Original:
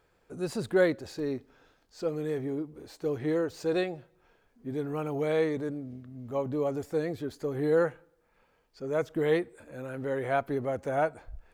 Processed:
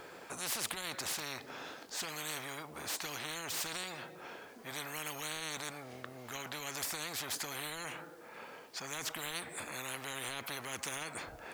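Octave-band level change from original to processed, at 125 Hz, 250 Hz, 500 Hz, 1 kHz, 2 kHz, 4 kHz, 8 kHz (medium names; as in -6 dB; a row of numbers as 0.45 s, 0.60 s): -14.5 dB, -17.5 dB, -19.5 dB, -6.0 dB, -2.0 dB, +8.5 dB, no reading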